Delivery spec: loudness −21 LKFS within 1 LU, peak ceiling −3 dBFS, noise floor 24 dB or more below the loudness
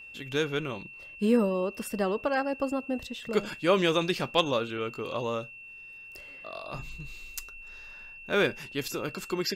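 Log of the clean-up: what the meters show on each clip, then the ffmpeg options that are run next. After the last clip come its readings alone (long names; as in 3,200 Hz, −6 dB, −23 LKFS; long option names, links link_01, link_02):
interfering tone 2,700 Hz; level of the tone −44 dBFS; integrated loudness −29.5 LKFS; sample peak −9.5 dBFS; target loudness −21.0 LKFS
→ -af "bandreject=frequency=2700:width=30"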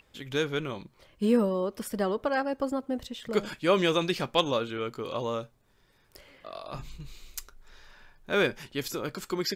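interfering tone none found; integrated loudness −29.5 LKFS; sample peak −9.5 dBFS; target loudness −21.0 LKFS
→ -af "volume=8.5dB,alimiter=limit=-3dB:level=0:latency=1"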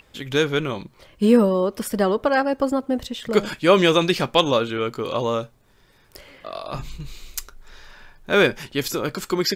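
integrated loudness −21.0 LKFS; sample peak −3.0 dBFS; background noise floor −56 dBFS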